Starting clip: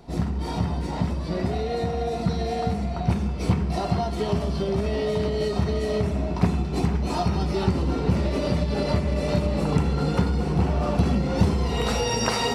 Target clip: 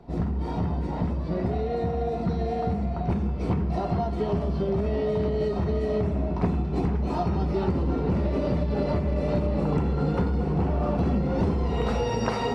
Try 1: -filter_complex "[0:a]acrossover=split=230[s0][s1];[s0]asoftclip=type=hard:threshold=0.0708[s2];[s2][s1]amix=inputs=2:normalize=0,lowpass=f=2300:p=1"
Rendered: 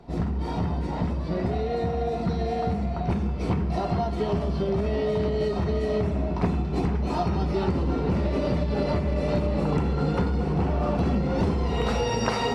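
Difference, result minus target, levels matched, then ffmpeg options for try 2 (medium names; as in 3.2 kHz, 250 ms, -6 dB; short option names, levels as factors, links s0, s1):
2 kHz band +3.5 dB
-filter_complex "[0:a]acrossover=split=230[s0][s1];[s0]asoftclip=type=hard:threshold=0.0708[s2];[s2][s1]amix=inputs=2:normalize=0,lowpass=f=1100:p=1"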